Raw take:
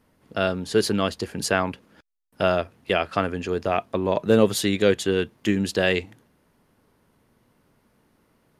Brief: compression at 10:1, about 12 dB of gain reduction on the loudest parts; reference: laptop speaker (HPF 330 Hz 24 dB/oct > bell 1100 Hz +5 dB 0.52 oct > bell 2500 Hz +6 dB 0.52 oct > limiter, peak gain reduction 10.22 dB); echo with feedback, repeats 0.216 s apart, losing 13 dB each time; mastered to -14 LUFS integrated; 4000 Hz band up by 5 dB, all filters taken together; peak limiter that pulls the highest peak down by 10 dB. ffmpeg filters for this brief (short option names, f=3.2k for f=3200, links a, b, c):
-af "equalizer=f=4k:t=o:g=4,acompressor=threshold=-24dB:ratio=10,alimiter=limit=-20dB:level=0:latency=1,highpass=f=330:w=0.5412,highpass=f=330:w=1.3066,equalizer=f=1.1k:t=o:w=0.52:g=5,equalizer=f=2.5k:t=o:w=0.52:g=6,aecho=1:1:216|432|648:0.224|0.0493|0.0108,volume=23.5dB,alimiter=limit=-3dB:level=0:latency=1"